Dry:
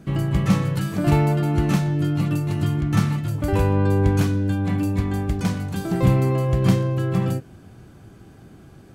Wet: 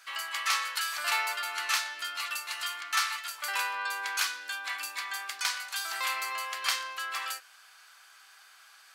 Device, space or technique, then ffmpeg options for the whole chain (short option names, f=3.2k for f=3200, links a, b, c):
headphones lying on a table: -af "highpass=f=1.2k:w=0.5412,highpass=f=1.2k:w=1.3066,equalizer=f=4.6k:t=o:w=0.55:g=5,volume=4.5dB"